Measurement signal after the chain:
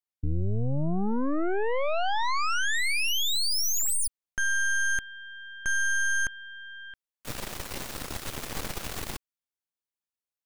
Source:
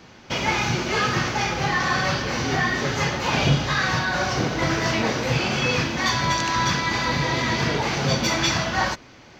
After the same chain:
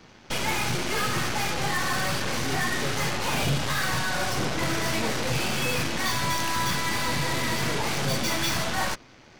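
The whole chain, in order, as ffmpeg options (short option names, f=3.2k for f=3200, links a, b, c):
-af "asoftclip=type=tanh:threshold=-15.5dB,aeval=exprs='0.168*(cos(1*acos(clip(val(0)/0.168,-1,1)))-cos(1*PI/2))+0.00211*(cos(7*acos(clip(val(0)/0.168,-1,1)))-cos(7*PI/2))+0.0422*(cos(8*acos(clip(val(0)/0.168,-1,1)))-cos(8*PI/2))':c=same,volume=-4dB"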